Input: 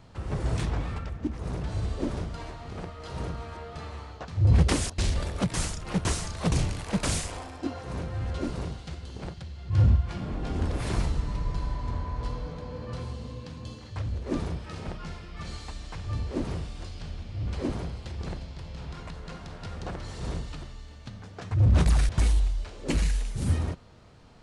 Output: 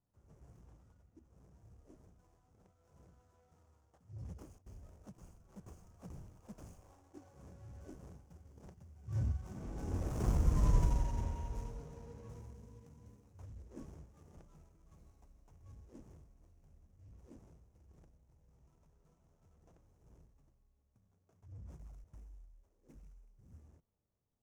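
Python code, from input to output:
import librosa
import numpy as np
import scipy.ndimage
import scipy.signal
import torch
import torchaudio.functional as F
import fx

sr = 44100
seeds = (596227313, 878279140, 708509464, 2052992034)

y = scipy.ndimage.median_filter(x, 25, mode='constant')
y = fx.doppler_pass(y, sr, speed_mps=22, closest_m=4.9, pass_at_s=10.71)
y = fx.high_shelf_res(y, sr, hz=5000.0, db=6.5, q=3.0)
y = y * librosa.db_to_amplitude(2.0)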